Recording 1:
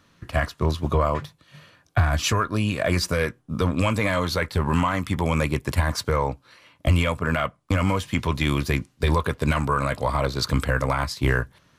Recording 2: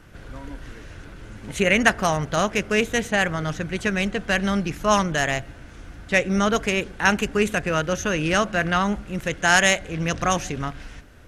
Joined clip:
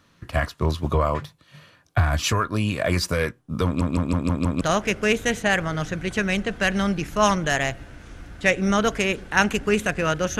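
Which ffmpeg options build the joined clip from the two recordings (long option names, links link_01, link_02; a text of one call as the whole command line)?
ffmpeg -i cue0.wav -i cue1.wav -filter_complex "[0:a]apad=whole_dur=10.39,atrim=end=10.39,asplit=6[link_01][link_02][link_03][link_04][link_05][link_06];[link_01]atrim=end=3.812[link_07];[link_02]atrim=start=3.648:end=3.812[link_08];[link_03]atrim=start=3.648:end=3.812[link_09];[link_04]atrim=start=3.648:end=3.812[link_10];[link_05]atrim=start=3.648:end=3.812[link_11];[link_06]atrim=start=3.648:end=3.812[link_12];[1:a]atrim=start=2.288:end=8.07[link_13];[link_07][link_08]acrossfade=duration=0.004:curve1=hsin:curve2=hsin[link_14];[link_14][link_09]acrossfade=duration=0.004:curve1=hsin:curve2=hsin[link_15];[link_15][link_10]acrossfade=duration=0.004:curve1=hsin:curve2=hsin[link_16];[link_16][link_11]acrossfade=duration=0.004:curve1=hsin:curve2=hsin[link_17];[link_17][link_12]acrossfade=duration=0.004:curve1=hsin:curve2=hsin[link_18];[link_18][link_13]acrossfade=duration=0.004:curve1=hsin:curve2=hsin" out.wav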